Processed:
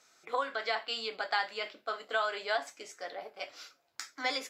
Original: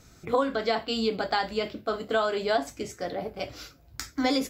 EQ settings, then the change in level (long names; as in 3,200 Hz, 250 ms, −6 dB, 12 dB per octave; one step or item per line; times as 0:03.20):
high-pass filter 700 Hz 12 dB per octave
Bessel low-pass filter 9,300 Hz, order 2
dynamic equaliser 1,900 Hz, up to +5 dB, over −43 dBFS, Q 1.2
−4.5 dB